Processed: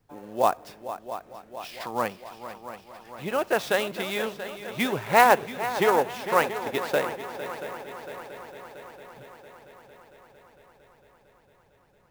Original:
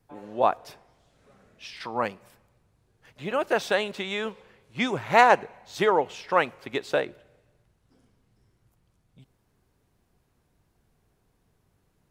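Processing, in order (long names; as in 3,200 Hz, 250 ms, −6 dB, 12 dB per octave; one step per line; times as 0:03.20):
on a send: echo machine with several playback heads 227 ms, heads second and third, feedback 65%, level −13 dB
on the sum: converter with an unsteady clock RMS 0.02 ms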